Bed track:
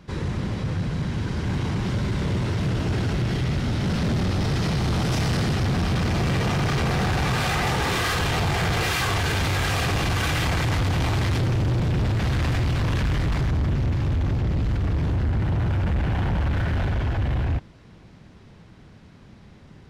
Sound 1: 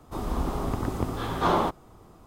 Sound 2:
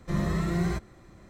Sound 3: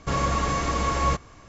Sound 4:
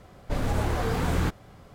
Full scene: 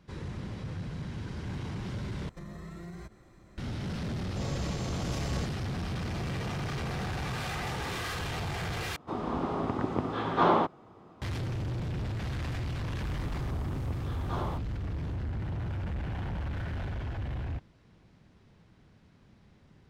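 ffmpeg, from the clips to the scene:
-filter_complex "[1:a]asplit=2[a][b];[0:a]volume=-11.5dB[c];[2:a]acompressor=threshold=-36dB:ratio=6:attack=3.2:release=140:knee=1:detection=peak[d];[3:a]asuperstop=centerf=1500:order=4:qfactor=0.71[e];[a]highpass=130,lowpass=3.3k[f];[c]asplit=3[g][h][i];[g]atrim=end=2.294[j];[d]atrim=end=1.29,asetpts=PTS-STARTPTS,volume=-4.5dB[k];[h]atrim=start=3.576:end=8.964[l];[f]atrim=end=2.26[m];[i]atrim=start=11.216[n];[e]atrim=end=1.48,asetpts=PTS-STARTPTS,volume=-11dB,afade=t=in:d=0.004:c=hsin,afade=t=out:st=1.476:d=0.004:c=hsin,adelay=189189S[o];[b]atrim=end=2.26,asetpts=PTS-STARTPTS,volume=-13.5dB,afade=t=in:d=0.004:c=hsin,afade=t=out:st=2.256:d=0.004:c=hsin,adelay=12880[p];[j][k]acrossfade=d=0.004:c1=hsin:c2=hsin[q];[q][l]acrossfade=d=0.004:c1=hsin:c2=hsin[r];[r][m]acrossfade=d=0.004:c1=hsin:c2=hsin[s];[s][n]acrossfade=d=0.004:c1=hsin:c2=hsin[t];[t][o][p]amix=inputs=3:normalize=0"

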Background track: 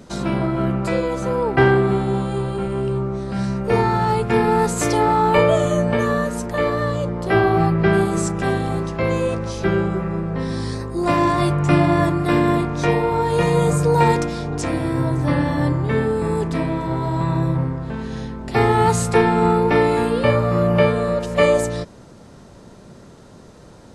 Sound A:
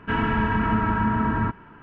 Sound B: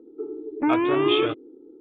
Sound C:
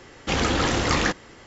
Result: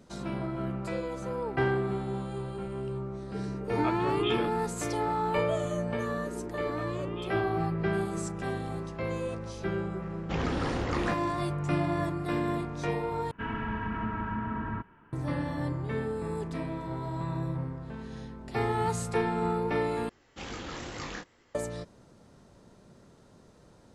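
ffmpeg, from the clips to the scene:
-filter_complex "[2:a]asplit=2[a][b];[3:a]asplit=2[c][d];[0:a]volume=-13dB[e];[b]acompressor=threshold=-36dB:ratio=6:attack=3.2:release=140:knee=1:detection=peak[f];[c]lowpass=f=1.3k:p=1[g];[d]flanger=delay=19.5:depth=7:speed=2.2[h];[e]asplit=3[i][j][k];[i]atrim=end=13.314[l];[1:a]atrim=end=1.82,asetpts=PTS-STARTPTS,volume=-11dB[m];[j]atrim=start=15.126:end=20.094[n];[h]atrim=end=1.46,asetpts=PTS-STARTPTS,volume=-14dB[o];[k]atrim=start=21.546[p];[a]atrim=end=1.8,asetpts=PTS-STARTPTS,volume=-9dB,afade=t=in:d=0.004:c=hsin,afade=t=out:st=1.796:d=0.004:c=hsin,adelay=3150[q];[f]atrim=end=1.8,asetpts=PTS-STARTPTS,volume=-2dB,afade=t=in:d=0.004:c=hsin,afade=t=out:st=1.796:d=0.004:c=hsin,adelay=6080[r];[g]atrim=end=1.46,asetpts=PTS-STARTPTS,volume=-7dB,afade=t=in:d=0.004:c=hsin,afade=t=out:st=1.456:d=0.004:c=hsin,adelay=441882S[s];[l][m]acrossfade=d=0.004:c1=hsin:c2=hsin[t];[t][n]acrossfade=d=0.004:c1=hsin:c2=hsin[u];[u][o]acrossfade=d=0.004:c1=hsin:c2=hsin[v];[v][p]acrossfade=d=0.004:c1=hsin:c2=hsin[w];[w][q][r][s]amix=inputs=4:normalize=0"

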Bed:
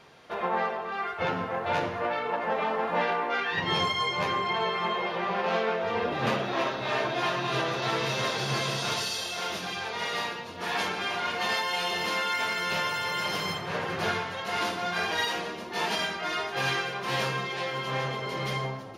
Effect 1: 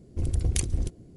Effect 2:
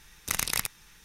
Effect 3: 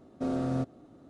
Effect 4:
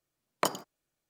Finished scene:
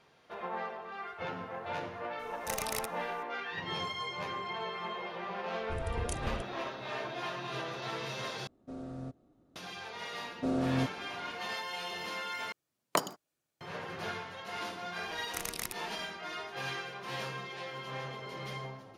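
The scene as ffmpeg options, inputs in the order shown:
-filter_complex "[2:a]asplit=2[a][b];[3:a]asplit=2[c][d];[0:a]volume=-10dB[e];[a]aeval=exprs='clip(val(0),-1,0.158)':c=same[f];[c]lowshelf=f=61:g=10.5[g];[4:a]highpass=89[h];[e]asplit=3[i][j][k];[i]atrim=end=8.474[l];[g]atrim=end=1.09,asetpts=PTS-STARTPTS,volume=-13dB[m];[j]atrim=start=9.556:end=12.524[n];[h]atrim=end=1.09,asetpts=PTS-STARTPTS,volume=-1dB[o];[k]atrim=start=13.606[p];[f]atrim=end=1.04,asetpts=PTS-STARTPTS,volume=-8dB,afade=t=in:d=0.004:c=hsin,afade=t=out:st=1.036:d=0.004:c=hsin,adelay=2190[q];[1:a]atrim=end=1.16,asetpts=PTS-STARTPTS,volume=-11.5dB,afade=t=in:d=0.004:c=hsin,afade=t=out:st=1.156:d=0.004:c=hsin,adelay=243873S[r];[d]atrim=end=1.09,asetpts=PTS-STARTPTS,volume=-0.5dB,afade=t=in:d=0.004:c=hsin,afade=t=out:st=1.086:d=0.004:c=hsin,adelay=10220[s];[b]atrim=end=1.04,asetpts=PTS-STARTPTS,volume=-10dB,afade=t=in:d=0.004:c=hsin,afade=t=out:st=1.036:d=0.004:c=hsin,adelay=15060[t];[l][m]acrossfade=d=0.004:c1=hsin:c2=hsin[u];[u][n]acrossfade=d=0.004:c1=hsin:c2=hsin[v];[v][o]acrossfade=d=0.004:c1=hsin:c2=hsin[w];[w][p]acrossfade=d=0.004:c1=hsin:c2=hsin[x];[x][q][r][s][t]amix=inputs=5:normalize=0"

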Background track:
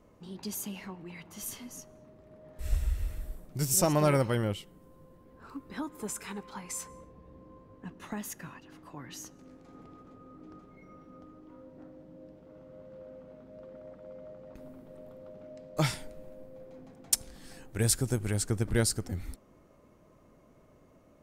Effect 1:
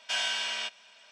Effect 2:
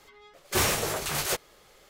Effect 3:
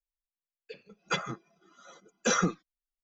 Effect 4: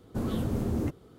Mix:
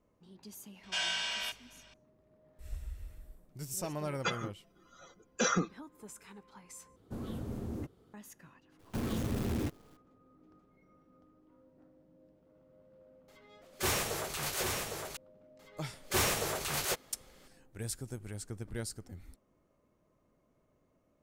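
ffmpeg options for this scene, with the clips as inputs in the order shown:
-filter_complex "[4:a]asplit=2[a][b];[2:a]asplit=2[c][d];[0:a]volume=-12.5dB[e];[1:a]aeval=exprs='val(0)+0.000708*(sin(2*PI*50*n/s)+sin(2*PI*2*50*n/s)/2+sin(2*PI*3*50*n/s)/3+sin(2*PI*4*50*n/s)/4+sin(2*PI*5*50*n/s)/5)':c=same[f];[b]acrusher=bits=7:dc=4:mix=0:aa=0.000001[g];[c]aecho=1:1:807:0.631[h];[e]asplit=2[i][j];[i]atrim=end=6.964[k];[a]atrim=end=1.18,asetpts=PTS-STARTPTS,volume=-10dB[l];[j]atrim=start=8.136[m];[f]atrim=end=1.11,asetpts=PTS-STARTPTS,volume=-3.5dB,afade=t=in:d=0.004:c=hsin,afade=t=out:st=1.106:d=0.004:c=hsin,adelay=830[n];[3:a]atrim=end=3.03,asetpts=PTS-STARTPTS,volume=-3.5dB,afade=t=in:d=0.004:c=hsin,afade=t=out:st=3.026:d=0.004:c=hsin,adelay=3140[o];[g]atrim=end=1.18,asetpts=PTS-STARTPTS,volume=-4.5dB,afade=t=in:d=0.004:c=hsin,afade=t=out:st=1.176:d=0.004:c=hsin,adelay=8790[p];[h]atrim=end=1.89,asetpts=PTS-STARTPTS,volume=-7dB,afade=t=in:d=0.004:c=hsin,afade=t=out:st=1.886:d=0.004:c=hsin,adelay=13280[q];[d]atrim=end=1.89,asetpts=PTS-STARTPTS,volume=-5dB,afade=t=in:d=0.004:c=hsin,afade=t=out:st=1.886:d=0.004:c=hsin,adelay=15590[r];[k][l]acrossfade=d=0.004:c1=hsin:c2=hsin[s];[s][m]acrossfade=d=0.004:c1=hsin:c2=hsin[t];[t][n][o][p][q][r]amix=inputs=6:normalize=0"

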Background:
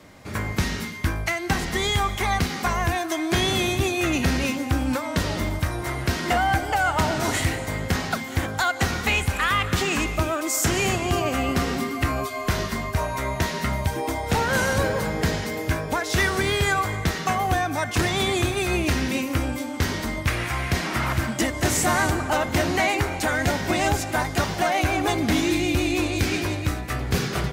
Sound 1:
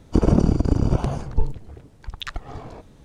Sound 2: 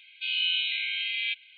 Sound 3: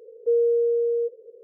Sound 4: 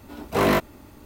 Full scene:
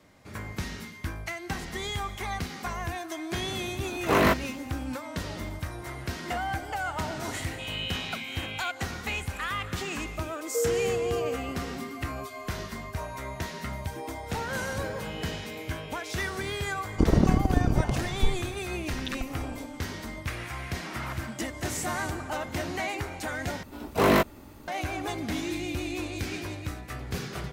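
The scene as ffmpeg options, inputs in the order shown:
-filter_complex "[4:a]asplit=2[a][b];[2:a]asplit=2[c][d];[0:a]volume=-10dB[e];[a]equalizer=f=1.6k:t=o:w=1.4:g=4[f];[e]asplit=2[g][h];[g]atrim=end=23.634[i];[b]atrim=end=1.05,asetpts=PTS-STARTPTS,volume=-1dB[j];[h]atrim=start=24.676[k];[f]atrim=end=1.05,asetpts=PTS-STARTPTS,volume=-3dB,afade=t=in:d=0.004:c=hsin,afade=t=out:st=1.046:d=0.004:c=hsin,adelay=3740[l];[c]atrim=end=1.57,asetpts=PTS-STARTPTS,volume=-8dB,afade=t=in:d=0.004:c=hsin,afade=t=out:st=1.566:d=0.004:c=hsin,adelay=7370[m];[3:a]atrim=end=1.43,asetpts=PTS-STARTPTS,volume=-7dB,afade=t=in:d=0.004:c=hsin,afade=t=out:st=1.426:d=0.004:c=hsin,adelay=10280[n];[d]atrim=end=1.57,asetpts=PTS-STARTPTS,volume=-17.5dB,afade=t=in:d=0.004:c=hsin,afade=t=out:st=1.566:d=0.004:c=hsin,adelay=14780[o];[1:a]atrim=end=3.04,asetpts=PTS-STARTPTS,volume=-4.5dB,afade=t=in:d=0.004:c=hsin,afade=t=out:st=3.036:d=0.004:c=hsin,adelay=16850[p];[i][j]acrossfade=d=0.004:c1=hsin:c2=hsin[q];[q][k]acrossfade=d=0.004:c1=hsin:c2=hsin[r];[r][l][m][n][o][p]amix=inputs=6:normalize=0"

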